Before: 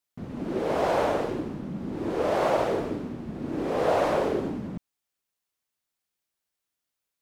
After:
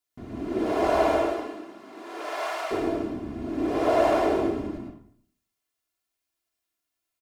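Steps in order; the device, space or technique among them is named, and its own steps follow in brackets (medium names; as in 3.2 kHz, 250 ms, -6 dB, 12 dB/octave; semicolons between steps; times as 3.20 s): 1.13–2.70 s: high-pass 370 Hz -> 1.4 kHz 12 dB/octave; microphone above a desk (comb 2.9 ms, depth 61%; reverberation RT60 0.60 s, pre-delay 90 ms, DRR 0 dB); trim -2.5 dB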